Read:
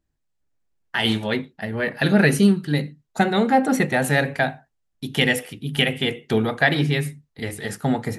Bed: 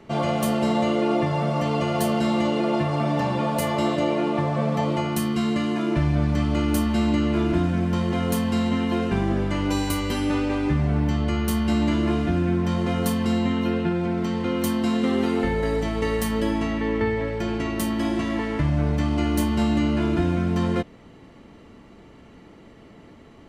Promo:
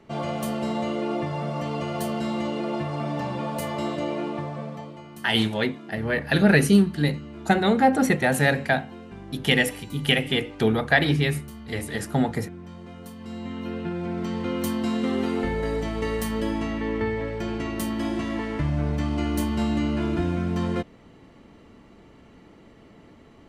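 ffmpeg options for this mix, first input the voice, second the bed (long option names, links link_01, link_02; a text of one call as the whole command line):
ffmpeg -i stem1.wav -i stem2.wav -filter_complex "[0:a]adelay=4300,volume=-1dB[link_01];[1:a]volume=9.5dB,afade=type=out:start_time=4.21:duration=0.73:silence=0.237137,afade=type=in:start_time=13.16:duration=1.22:silence=0.177828[link_02];[link_01][link_02]amix=inputs=2:normalize=0" out.wav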